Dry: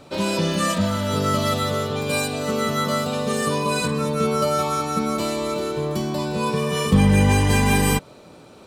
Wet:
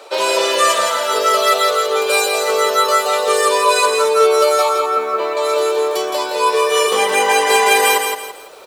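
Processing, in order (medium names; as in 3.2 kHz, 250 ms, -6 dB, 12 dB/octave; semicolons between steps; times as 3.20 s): Chebyshev high-pass 420 Hz, order 4; reverb removal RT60 0.51 s; 4.69–5.37 s: low-pass 2 kHz 12 dB/octave; early reflections 11 ms -14 dB, 45 ms -17 dB; loudness maximiser +13 dB; bit-crushed delay 167 ms, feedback 35%, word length 7-bit, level -5 dB; trim -3 dB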